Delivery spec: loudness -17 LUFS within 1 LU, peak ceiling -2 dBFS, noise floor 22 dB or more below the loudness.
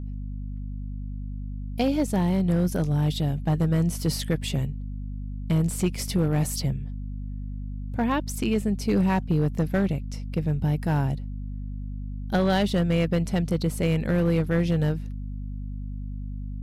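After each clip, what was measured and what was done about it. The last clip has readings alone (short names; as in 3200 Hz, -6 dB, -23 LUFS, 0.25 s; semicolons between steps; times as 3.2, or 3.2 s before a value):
clipped 1.1%; flat tops at -15.5 dBFS; hum 50 Hz; harmonics up to 250 Hz; hum level -30 dBFS; loudness -26.5 LUFS; peak -15.5 dBFS; loudness target -17.0 LUFS
-> clip repair -15.5 dBFS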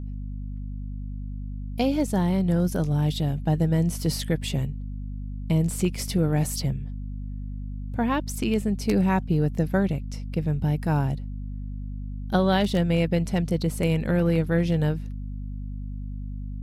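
clipped 0.0%; hum 50 Hz; harmonics up to 250 Hz; hum level -30 dBFS
-> de-hum 50 Hz, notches 5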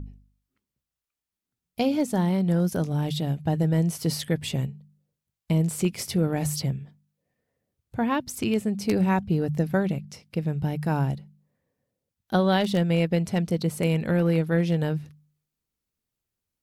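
hum none; loudness -25.5 LUFS; peak -8.0 dBFS; loudness target -17.0 LUFS
-> gain +8.5 dB; limiter -2 dBFS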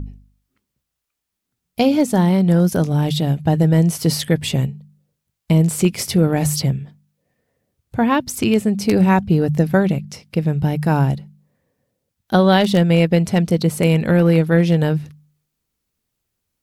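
loudness -17.0 LUFS; peak -2.0 dBFS; noise floor -79 dBFS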